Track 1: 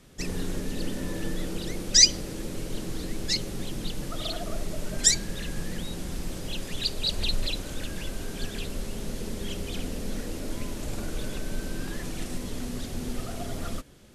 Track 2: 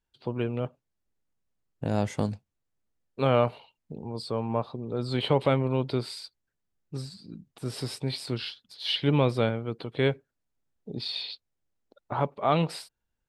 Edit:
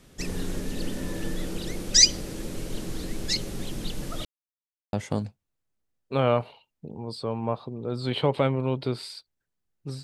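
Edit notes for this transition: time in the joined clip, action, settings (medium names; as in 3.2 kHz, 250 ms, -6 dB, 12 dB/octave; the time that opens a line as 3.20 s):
track 1
4.25–4.93 s: mute
4.93 s: go over to track 2 from 2.00 s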